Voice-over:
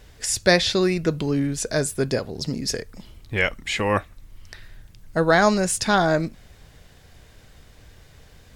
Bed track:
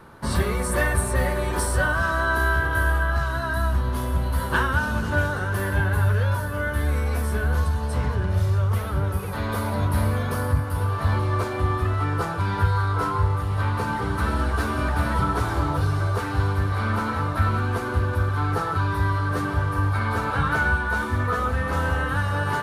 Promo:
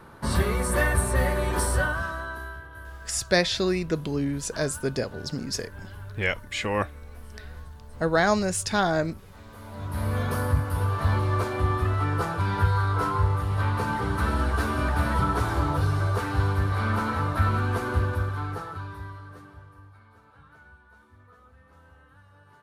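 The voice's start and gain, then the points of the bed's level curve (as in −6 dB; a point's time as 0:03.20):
2.85 s, −4.5 dB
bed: 0:01.73 −1 dB
0:02.67 −20.5 dB
0:09.52 −20.5 dB
0:10.20 −1.5 dB
0:18.01 −1.5 dB
0:20.09 −31 dB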